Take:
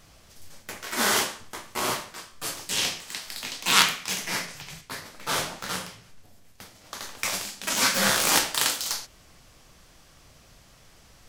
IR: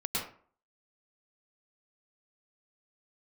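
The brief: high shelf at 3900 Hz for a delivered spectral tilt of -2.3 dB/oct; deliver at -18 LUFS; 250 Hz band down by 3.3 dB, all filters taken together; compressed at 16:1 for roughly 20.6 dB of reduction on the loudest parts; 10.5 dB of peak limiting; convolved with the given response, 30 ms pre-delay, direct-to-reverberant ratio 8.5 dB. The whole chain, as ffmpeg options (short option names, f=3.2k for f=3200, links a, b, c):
-filter_complex "[0:a]equalizer=f=250:t=o:g=-4.5,highshelf=f=3.9k:g=-4.5,acompressor=threshold=-36dB:ratio=16,alimiter=level_in=6dB:limit=-24dB:level=0:latency=1,volume=-6dB,asplit=2[a][b];[1:a]atrim=start_sample=2205,adelay=30[c];[b][c]afir=irnorm=-1:irlink=0,volume=-14.5dB[d];[a][d]amix=inputs=2:normalize=0,volume=24dB"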